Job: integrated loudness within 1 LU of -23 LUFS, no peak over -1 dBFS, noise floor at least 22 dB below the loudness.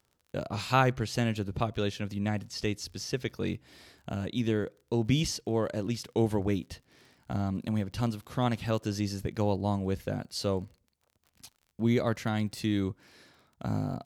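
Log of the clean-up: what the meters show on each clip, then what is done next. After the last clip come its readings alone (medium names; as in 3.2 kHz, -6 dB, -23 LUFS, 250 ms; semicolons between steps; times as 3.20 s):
tick rate 43 per s; loudness -31.5 LUFS; peak level -11.5 dBFS; loudness target -23.0 LUFS
-> de-click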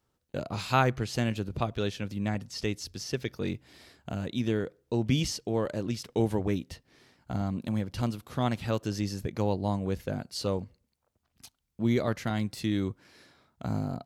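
tick rate 0.28 per s; loudness -31.5 LUFS; peak level -11.5 dBFS; loudness target -23.0 LUFS
-> trim +8.5 dB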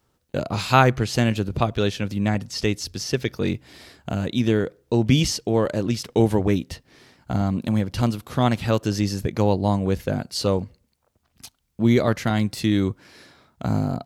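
loudness -23.0 LUFS; peak level -3.0 dBFS; noise floor -70 dBFS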